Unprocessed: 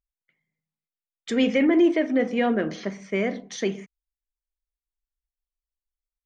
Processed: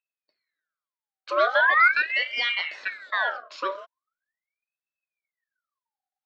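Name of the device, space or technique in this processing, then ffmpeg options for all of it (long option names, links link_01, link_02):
voice changer toy: -af "aeval=exprs='val(0)*sin(2*PI*1700*n/s+1700*0.55/0.41*sin(2*PI*0.41*n/s))':channel_layout=same,highpass=590,equalizer=frequency=600:width_type=q:width=4:gain=7,equalizer=frequency=880:width_type=q:width=4:gain=-6,equalizer=frequency=1500:width_type=q:width=4:gain=5,equalizer=frequency=2800:width_type=q:width=4:gain=-7,lowpass=frequency=4700:width=0.5412,lowpass=frequency=4700:width=1.3066,volume=1.5dB"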